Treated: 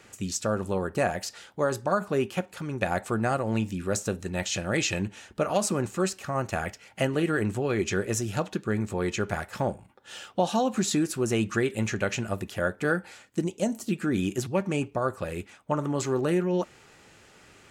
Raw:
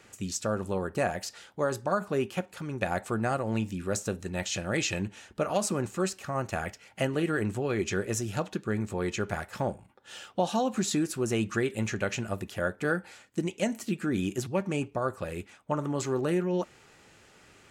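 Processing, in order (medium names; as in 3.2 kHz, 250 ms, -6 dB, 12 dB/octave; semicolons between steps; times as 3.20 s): 13.44–13.89 s: peaking EQ 2.1 kHz -11.5 dB 1.2 oct; trim +2.5 dB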